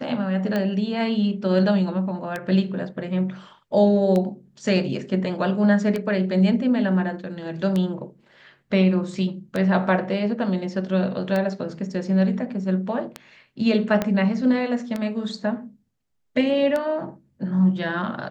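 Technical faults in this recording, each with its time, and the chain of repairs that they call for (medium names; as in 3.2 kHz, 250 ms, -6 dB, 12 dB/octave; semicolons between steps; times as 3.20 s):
tick 33 1/3 rpm -13 dBFS
14.02 s: pop -9 dBFS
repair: de-click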